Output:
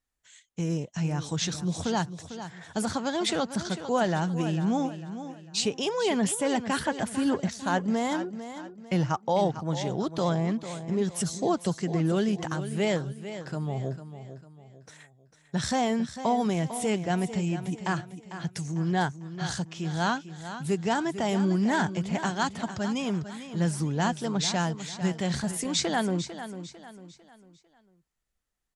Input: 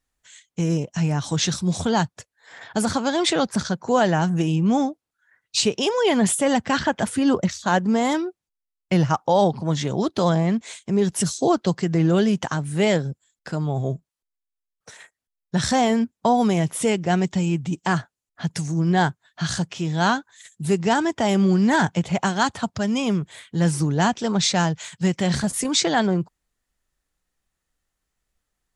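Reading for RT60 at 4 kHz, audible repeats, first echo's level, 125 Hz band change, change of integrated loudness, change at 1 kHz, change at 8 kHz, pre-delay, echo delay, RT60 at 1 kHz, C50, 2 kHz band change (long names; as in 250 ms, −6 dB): no reverb audible, 3, −11.5 dB, −6.5 dB, −7.0 dB, −6.5 dB, −6.5 dB, no reverb audible, 449 ms, no reverb audible, no reverb audible, −6.5 dB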